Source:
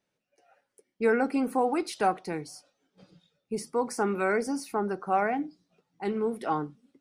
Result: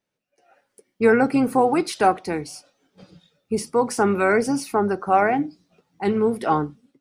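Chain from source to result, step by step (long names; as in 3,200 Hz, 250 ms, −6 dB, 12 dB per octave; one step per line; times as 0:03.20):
automatic gain control gain up to 10 dB
pitch-shifted copies added −12 semitones −17 dB
level −1.5 dB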